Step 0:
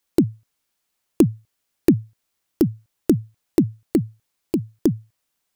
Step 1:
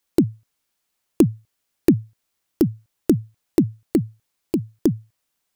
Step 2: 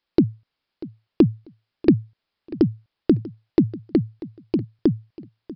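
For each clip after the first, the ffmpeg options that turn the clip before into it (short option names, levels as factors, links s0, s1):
-af anull
-af "aecho=1:1:641|1282:0.126|0.0277,aresample=11025,aresample=44100"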